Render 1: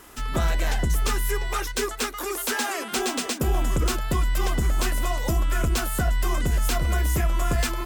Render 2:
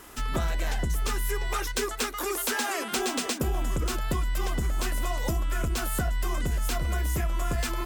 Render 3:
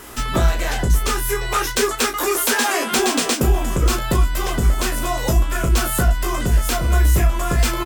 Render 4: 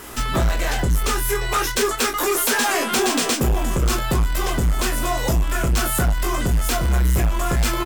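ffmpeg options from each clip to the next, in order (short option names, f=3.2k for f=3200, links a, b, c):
-af "acompressor=threshold=-24dB:ratio=6"
-af "aecho=1:1:17|35:0.562|0.422,volume=8.5dB"
-filter_complex "[0:a]asplit=2[a][b];[b]acrusher=bits=4:dc=4:mix=0:aa=0.000001,volume=-11dB[c];[a][c]amix=inputs=2:normalize=0,asoftclip=type=tanh:threshold=-14dB"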